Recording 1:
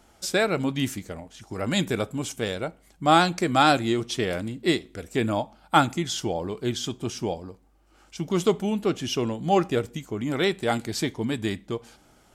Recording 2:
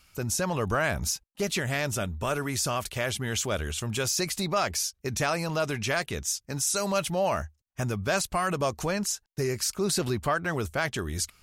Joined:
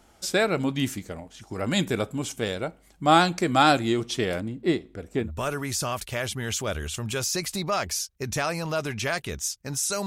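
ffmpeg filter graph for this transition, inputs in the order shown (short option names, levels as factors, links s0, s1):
-filter_complex "[0:a]asplit=3[s0][s1][s2];[s0]afade=t=out:st=4.39:d=0.02[s3];[s1]highshelf=f=2200:g=-11.5,afade=t=in:st=4.39:d=0.02,afade=t=out:st=5.31:d=0.02[s4];[s2]afade=t=in:st=5.31:d=0.02[s5];[s3][s4][s5]amix=inputs=3:normalize=0,apad=whole_dur=10.06,atrim=end=10.06,atrim=end=5.31,asetpts=PTS-STARTPTS[s6];[1:a]atrim=start=2.01:end=6.9,asetpts=PTS-STARTPTS[s7];[s6][s7]acrossfade=d=0.14:c1=tri:c2=tri"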